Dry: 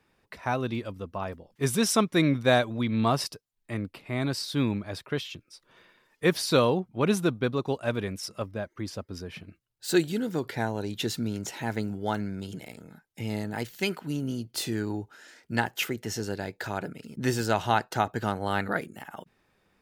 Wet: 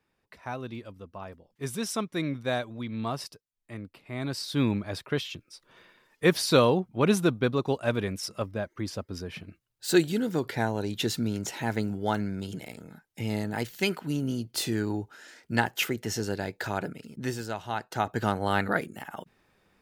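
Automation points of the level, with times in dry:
0:03.97 −7.5 dB
0:04.67 +1.5 dB
0:16.87 +1.5 dB
0:17.63 −10.5 dB
0:18.20 +2 dB

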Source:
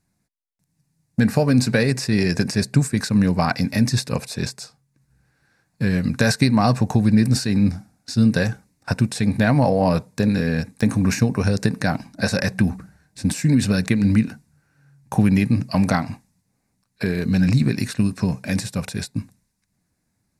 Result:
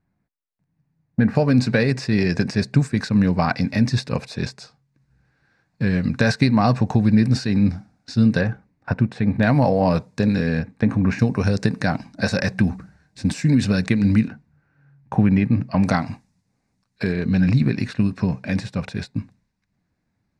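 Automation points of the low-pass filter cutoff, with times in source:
2,000 Hz
from 0:01.35 4,400 Hz
from 0:08.41 2,100 Hz
from 0:09.43 5,500 Hz
from 0:10.59 2,400 Hz
from 0:11.19 5,700 Hz
from 0:14.28 2,400 Hz
from 0:15.83 6,100 Hz
from 0:17.13 3,600 Hz

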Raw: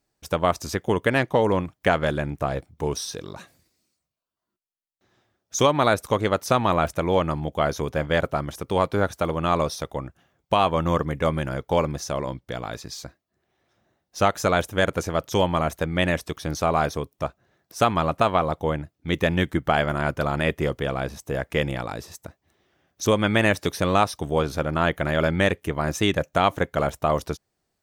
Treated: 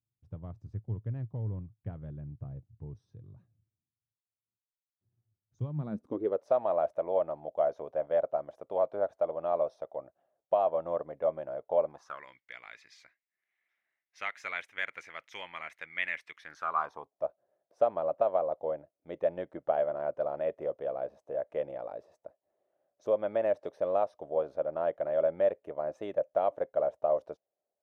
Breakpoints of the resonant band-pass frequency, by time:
resonant band-pass, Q 5.9
0:05.64 110 Hz
0:06.48 620 Hz
0:11.85 620 Hz
0:12.27 2,100 Hz
0:16.38 2,100 Hz
0:17.25 590 Hz

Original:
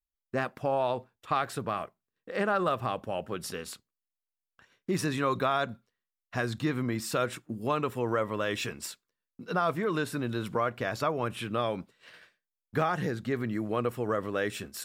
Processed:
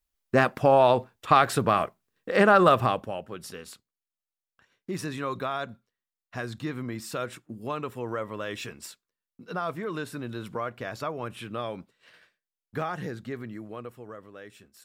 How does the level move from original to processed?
0:02.80 +9.5 dB
0:03.24 −3.5 dB
0:13.18 −3.5 dB
0:14.30 −15 dB

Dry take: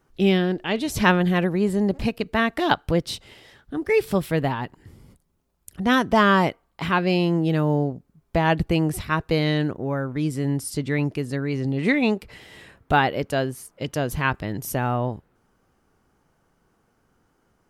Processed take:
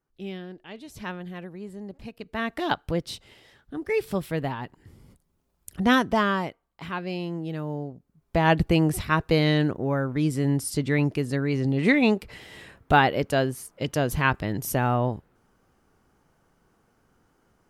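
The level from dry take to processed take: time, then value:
0:02.03 −17 dB
0:02.51 −5.5 dB
0:04.60 −5.5 dB
0:05.82 +1.5 dB
0:06.48 −10.5 dB
0:07.89 −10.5 dB
0:08.49 +0.5 dB

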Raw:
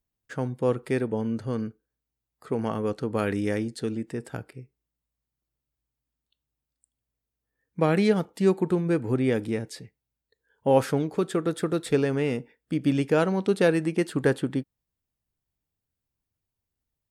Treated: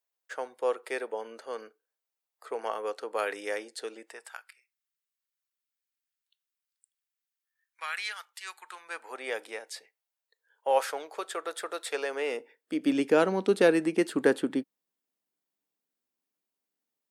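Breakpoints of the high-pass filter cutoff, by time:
high-pass filter 24 dB per octave
0:04.03 500 Hz
0:04.48 1,300 Hz
0:08.59 1,300 Hz
0:09.24 590 Hz
0:11.92 590 Hz
0:13.07 230 Hz

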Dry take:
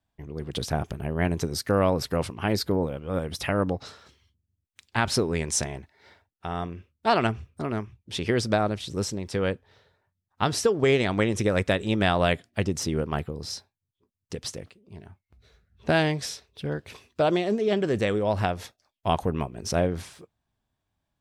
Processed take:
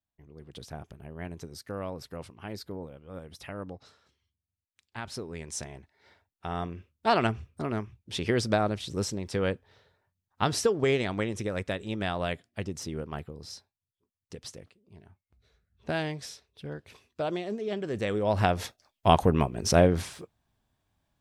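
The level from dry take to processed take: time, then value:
0:05.17 −14 dB
0:06.53 −2 dB
0:10.60 −2 dB
0:11.48 −8.5 dB
0:17.85 −8.5 dB
0:18.61 +4 dB

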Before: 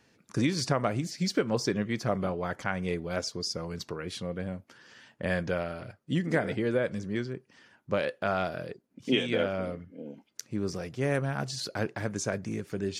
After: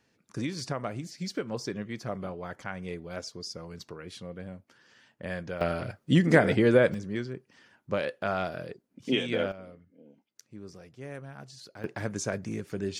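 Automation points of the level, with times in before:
−6 dB
from 0:05.61 +7 dB
from 0:06.94 −1 dB
from 0:09.52 −13 dB
from 0:11.84 −0.5 dB

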